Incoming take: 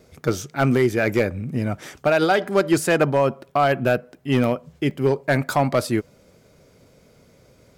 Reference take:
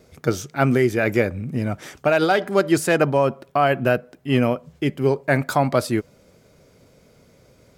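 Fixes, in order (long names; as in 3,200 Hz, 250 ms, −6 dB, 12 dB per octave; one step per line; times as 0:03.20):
clipped peaks rebuilt −10 dBFS
repair the gap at 0:04.44/0:04.91, 1.3 ms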